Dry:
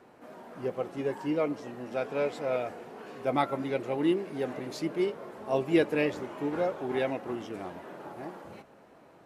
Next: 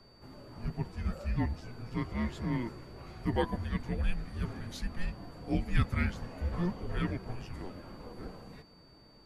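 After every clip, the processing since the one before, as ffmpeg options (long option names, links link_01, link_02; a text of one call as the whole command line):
ffmpeg -i in.wav -af "afreqshift=-360,aeval=exprs='val(0)+0.00112*sin(2*PI*4600*n/s)':channel_layout=same,volume=-2.5dB" out.wav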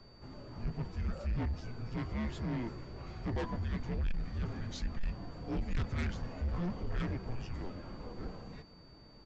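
ffmpeg -i in.wav -af "aresample=16000,asoftclip=type=tanh:threshold=-33dB,aresample=44100,lowshelf=frequency=130:gain=5" out.wav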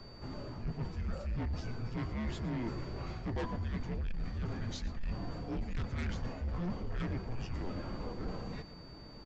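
ffmpeg -i in.wav -af "areverse,acompressor=threshold=-40dB:ratio=6,areverse,aecho=1:1:114:0.141,volume=6dB" out.wav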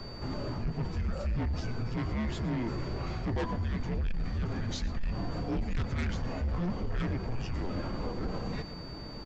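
ffmpeg -i in.wav -af "alimiter=level_in=10.5dB:limit=-24dB:level=0:latency=1:release=95,volume=-10.5dB,volume=8.5dB" out.wav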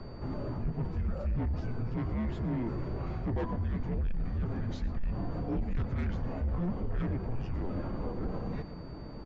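ffmpeg -i in.wav -af "lowpass=frequency=1000:poles=1" out.wav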